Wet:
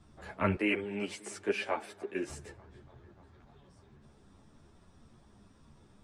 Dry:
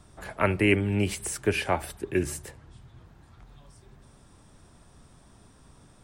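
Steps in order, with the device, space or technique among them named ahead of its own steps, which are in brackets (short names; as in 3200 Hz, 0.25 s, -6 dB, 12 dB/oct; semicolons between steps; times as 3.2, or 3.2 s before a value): 0.55–2.3 HPF 370 Hz 12 dB/oct; bell 250 Hz +4 dB 2 oct; analogue delay 0.295 s, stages 4096, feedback 72%, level -21.5 dB; string-machine ensemble chorus (ensemble effect; LPF 6500 Hz 12 dB/oct); gain -4 dB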